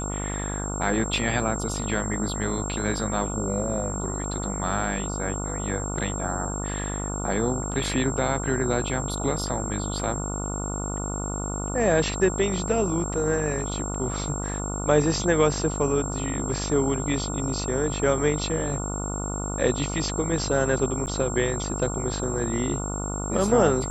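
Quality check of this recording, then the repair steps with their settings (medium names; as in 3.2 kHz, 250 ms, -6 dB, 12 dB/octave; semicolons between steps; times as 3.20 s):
buzz 50 Hz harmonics 29 -31 dBFS
whine 7.5 kHz -33 dBFS
21.06–21.07 s: dropout 9.5 ms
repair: band-stop 7.5 kHz, Q 30; de-hum 50 Hz, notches 29; interpolate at 21.06 s, 9.5 ms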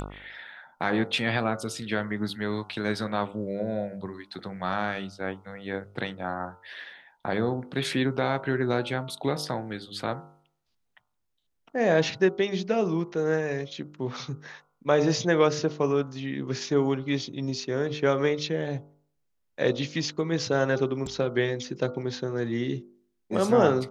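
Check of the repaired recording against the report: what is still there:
nothing left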